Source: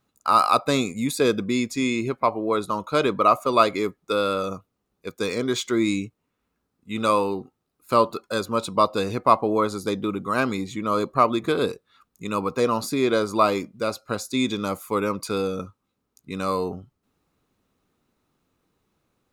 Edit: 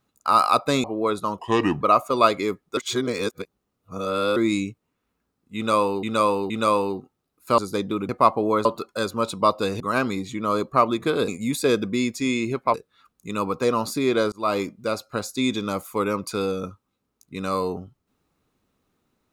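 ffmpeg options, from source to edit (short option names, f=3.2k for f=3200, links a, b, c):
-filter_complex "[0:a]asplit=15[a][b][c][d][e][f][g][h][i][j][k][l][m][n][o];[a]atrim=end=0.842[p];[b]atrim=start=2.298:end=2.854[q];[c]atrim=start=2.85:end=3.17,asetpts=PTS-STARTPTS,asetrate=33516,aresample=44100,atrim=end_sample=18568,asetpts=PTS-STARTPTS[r];[d]atrim=start=3.166:end=4.132[s];[e]atrim=start=4.128:end=5.722,asetpts=PTS-STARTPTS,areverse[t];[f]atrim=start=5.718:end=7.392[u];[g]atrim=start=6.918:end=7.392[v];[h]atrim=start=6.918:end=8.002[w];[i]atrim=start=9.708:end=10.222[x];[j]atrim=start=9.148:end=9.712[y];[k]atrim=start=7.998:end=9.152[z];[l]atrim=start=10.218:end=11.702[aa];[m]atrim=start=0.838:end=2.302[ab];[n]atrim=start=11.698:end=13.28,asetpts=PTS-STARTPTS,afade=t=out:st=1.578:d=0.004:c=hsin[ac];[o]atrim=start=13.28,asetpts=PTS-STARTPTS,afade=t=in:d=0.26[ad];[p][q]acrossfade=d=0.004:c1=hsin:c2=hsin[ae];[ae][r]acrossfade=d=0.004:c1=hsin:c2=hsin[af];[af][s]acrossfade=d=0.004:c1=hsin:c2=hsin[ag];[ag][t]acrossfade=d=0.004:c1=hsin:c2=hsin[ah];[ah][u]acrossfade=d=0.004:c1=hsin:c2=hsin[ai];[ai][v]acrossfade=d=0.004:c1=hsin:c2=hsin[aj];[aj][w]acrossfade=d=0.004:c1=hsin:c2=hsin[ak];[ak][x]acrossfade=d=0.004:c1=hsin:c2=hsin[al];[al][y]acrossfade=d=0.004:c1=hsin:c2=hsin[am];[am][z]acrossfade=d=0.004:c1=hsin:c2=hsin[an];[an][aa]acrossfade=d=0.004:c1=hsin:c2=hsin[ao];[ao][ab]acrossfade=d=0.004:c1=hsin:c2=hsin[ap];[ac][ad]concat=n=2:v=0:a=1[aq];[ap][aq]acrossfade=d=0.004:c1=hsin:c2=hsin"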